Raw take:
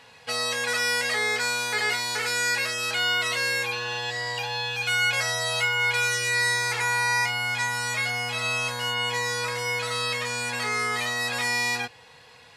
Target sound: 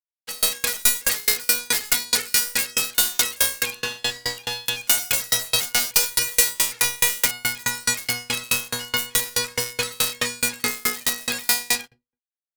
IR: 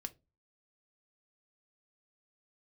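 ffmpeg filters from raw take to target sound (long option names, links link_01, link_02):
-filter_complex "[0:a]equalizer=frequency=840:width_type=o:width=1.5:gain=-7,bandreject=frequency=60:width_type=h:width=6,bandreject=frequency=120:width_type=h:width=6,acrossover=split=250|3800[link_01][link_02][link_03];[link_01]dynaudnorm=framelen=600:gausssize=5:maxgain=9dB[link_04];[link_04][link_02][link_03]amix=inputs=3:normalize=0,bandreject=frequency=670:width=12,aeval=exprs='(mod(11.2*val(0)+1,2)-1)/11.2':channel_layout=same,aemphasis=mode=production:type=cd,aeval=exprs='sgn(val(0))*max(abs(val(0))-0.0158,0)':channel_layout=same,asplit=2[link_05][link_06];[1:a]atrim=start_sample=2205[link_07];[link_06][link_07]afir=irnorm=-1:irlink=0,volume=-2.5dB[link_08];[link_05][link_08]amix=inputs=2:normalize=0,alimiter=level_in=11dB:limit=-1dB:release=50:level=0:latency=1,aeval=exprs='val(0)*pow(10,-32*if(lt(mod(4.7*n/s,1),2*abs(4.7)/1000),1-mod(4.7*n/s,1)/(2*abs(4.7)/1000),(mod(4.7*n/s,1)-2*abs(4.7)/1000)/(1-2*abs(4.7)/1000))/20)':channel_layout=same"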